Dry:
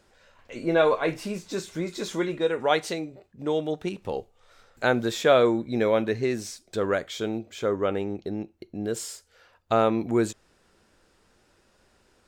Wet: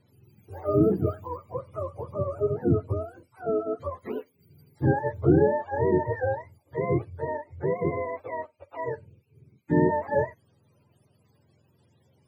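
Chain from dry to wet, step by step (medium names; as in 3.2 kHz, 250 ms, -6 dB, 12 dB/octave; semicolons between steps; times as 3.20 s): spectrum inverted on a logarithmic axis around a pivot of 450 Hz; 2.90–3.42 s: tone controls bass +7 dB, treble +13 dB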